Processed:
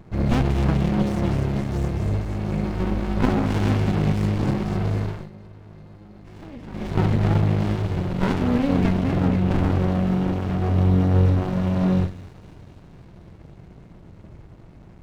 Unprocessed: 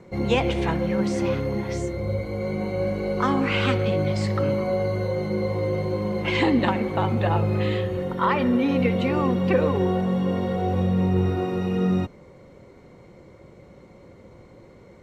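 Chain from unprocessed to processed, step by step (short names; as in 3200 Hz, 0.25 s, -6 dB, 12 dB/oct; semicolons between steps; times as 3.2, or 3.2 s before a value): low shelf 100 Hz +11.5 dB; 2.63–3.44 doubler 16 ms -4.5 dB; 9–9.59 air absorption 380 m; thin delay 0.246 s, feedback 68%, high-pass 1900 Hz, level -5 dB; shoebox room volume 2900 m³, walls furnished, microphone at 0.6 m; 5.04–6.95 dip -19.5 dB, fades 0.26 s; running maximum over 65 samples; gain +1.5 dB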